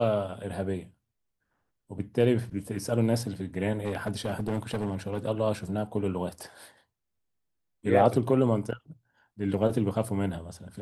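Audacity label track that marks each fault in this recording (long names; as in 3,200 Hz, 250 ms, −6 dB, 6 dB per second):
3.850000	5.260000	clipping −24.5 dBFS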